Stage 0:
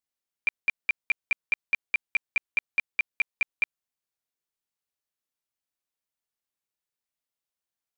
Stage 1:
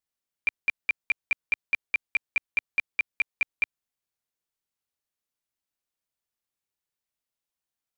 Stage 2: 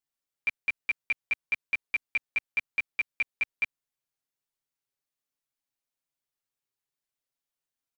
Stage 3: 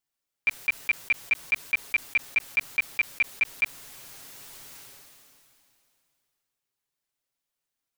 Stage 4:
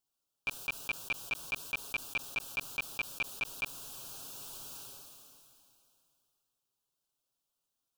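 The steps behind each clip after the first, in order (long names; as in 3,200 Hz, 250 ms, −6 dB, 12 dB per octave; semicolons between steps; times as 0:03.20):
low-shelf EQ 160 Hz +3.5 dB
comb filter 7.3 ms, depth 74%; level −4 dB
level that may fall only so fast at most 22 dB per second; level +4 dB
Butterworth band-reject 2,000 Hz, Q 1.6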